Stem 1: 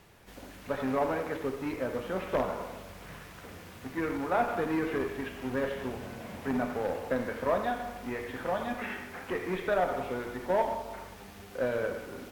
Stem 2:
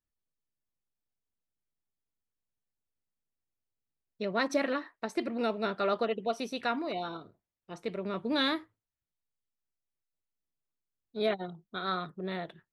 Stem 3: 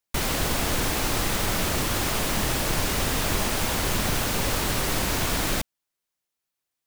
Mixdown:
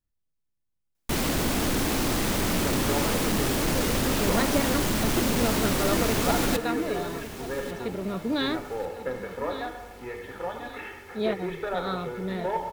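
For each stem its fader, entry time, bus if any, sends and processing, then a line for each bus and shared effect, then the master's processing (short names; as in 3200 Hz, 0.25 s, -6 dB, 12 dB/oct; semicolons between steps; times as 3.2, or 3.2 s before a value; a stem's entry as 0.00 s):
-3.0 dB, 1.95 s, no send, no echo send, comb 2.3 ms, depth 66%
-1.0 dB, 0.00 s, no send, echo send -13 dB, low shelf 250 Hz +11.5 dB
-1.5 dB, 0.95 s, no send, echo send -15 dB, bell 260 Hz +8.5 dB 1.4 oct; hard clip -19.5 dBFS, distortion -14 dB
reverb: off
echo: feedback echo 1.145 s, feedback 39%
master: dry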